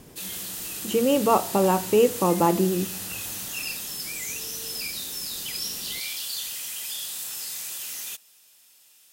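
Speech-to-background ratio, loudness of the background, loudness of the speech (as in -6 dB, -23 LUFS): 8.0 dB, -30.5 LUFS, -22.5 LUFS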